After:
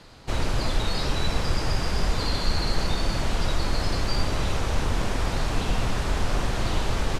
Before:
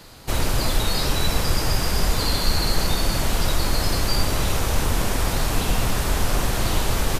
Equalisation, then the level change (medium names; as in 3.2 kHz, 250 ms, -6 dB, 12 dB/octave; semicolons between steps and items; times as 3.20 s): distance through air 74 m; -3.0 dB